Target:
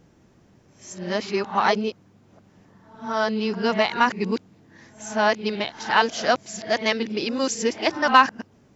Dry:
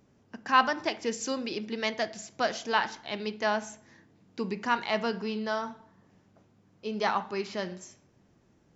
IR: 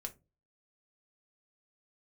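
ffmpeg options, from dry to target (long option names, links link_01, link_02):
-af "areverse,acontrast=36,volume=2.5dB"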